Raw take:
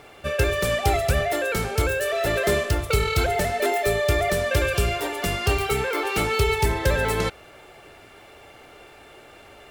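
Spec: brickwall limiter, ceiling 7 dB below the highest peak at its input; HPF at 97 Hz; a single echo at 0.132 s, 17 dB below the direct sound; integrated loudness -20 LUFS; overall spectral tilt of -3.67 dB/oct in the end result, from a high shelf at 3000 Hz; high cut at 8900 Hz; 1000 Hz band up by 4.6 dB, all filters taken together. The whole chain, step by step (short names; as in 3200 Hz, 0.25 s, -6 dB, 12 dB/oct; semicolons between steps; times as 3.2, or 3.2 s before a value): HPF 97 Hz; LPF 8900 Hz; bell 1000 Hz +6.5 dB; high shelf 3000 Hz +3 dB; limiter -14 dBFS; echo 0.132 s -17 dB; gain +3 dB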